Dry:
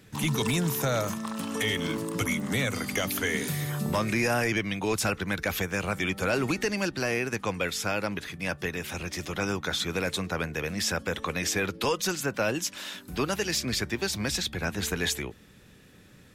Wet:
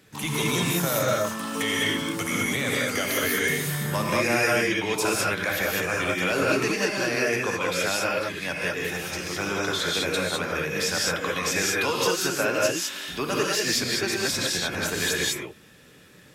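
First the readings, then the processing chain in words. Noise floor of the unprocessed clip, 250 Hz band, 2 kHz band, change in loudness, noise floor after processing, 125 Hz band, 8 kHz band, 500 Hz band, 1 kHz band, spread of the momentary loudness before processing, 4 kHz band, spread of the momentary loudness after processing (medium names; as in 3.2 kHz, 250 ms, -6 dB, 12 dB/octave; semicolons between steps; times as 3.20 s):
-54 dBFS, +1.0 dB, +5.5 dB, +4.0 dB, -51 dBFS, -0.5 dB, +5.0 dB, +4.5 dB, +4.5 dB, 6 LU, +5.0 dB, 5 LU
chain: bass shelf 150 Hz -11 dB; gated-style reverb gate 230 ms rising, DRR -3.5 dB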